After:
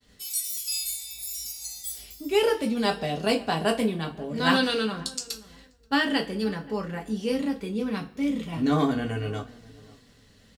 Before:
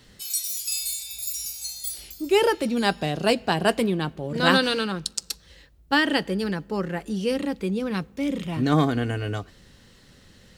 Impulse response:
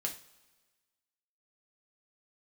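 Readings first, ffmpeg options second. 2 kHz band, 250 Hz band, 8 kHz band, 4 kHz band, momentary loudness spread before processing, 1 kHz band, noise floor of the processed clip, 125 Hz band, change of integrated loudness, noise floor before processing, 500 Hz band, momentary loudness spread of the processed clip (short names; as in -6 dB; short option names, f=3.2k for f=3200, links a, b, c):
-3.5 dB, -1.5 dB, -2.5 dB, -2.5 dB, 10 LU, -3.0 dB, -57 dBFS, -4.5 dB, -2.5 dB, -54 dBFS, -2.5 dB, 10 LU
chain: -filter_complex "[0:a]asplit=2[a][b];[b]adelay=530,lowpass=f=1.3k:p=1,volume=-20.5dB,asplit=2[c][d];[d]adelay=530,lowpass=f=1.3k:p=1,volume=0.23[e];[a][c][e]amix=inputs=3:normalize=0,agate=range=-33dB:threshold=-49dB:ratio=3:detection=peak[f];[1:a]atrim=start_sample=2205,asetrate=70560,aresample=44100[g];[f][g]afir=irnorm=-1:irlink=0"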